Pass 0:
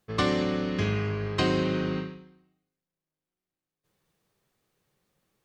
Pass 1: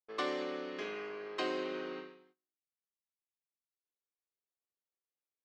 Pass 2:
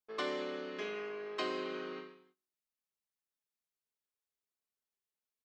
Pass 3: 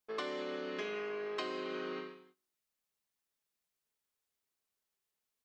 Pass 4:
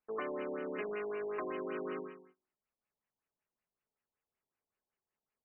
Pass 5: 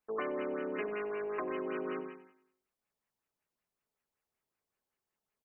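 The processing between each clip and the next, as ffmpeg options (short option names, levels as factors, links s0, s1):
-af "highpass=f=320:w=0.5412,highpass=f=320:w=1.3066,agate=range=0.1:threshold=0.00112:ratio=16:detection=peak,highshelf=f=5300:g=-7.5,volume=0.398"
-af "aecho=1:1:4.7:0.43,volume=0.841"
-af "acompressor=threshold=0.00891:ratio=6,volume=1.78"
-filter_complex "[0:a]asplit=2[s0][s1];[s1]asoftclip=type=hard:threshold=0.0133,volume=0.562[s2];[s0][s2]amix=inputs=2:normalize=0,afftfilt=real='re*lt(b*sr/1024,950*pow(3100/950,0.5+0.5*sin(2*PI*5.3*pts/sr)))':imag='im*lt(b*sr/1024,950*pow(3100/950,0.5+0.5*sin(2*PI*5.3*pts/sr)))':win_size=1024:overlap=0.75,volume=0.794"
-af "aecho=1:1:95|190|285|380:0.2|0.0938|0.0441|0.0207,volume=1.33"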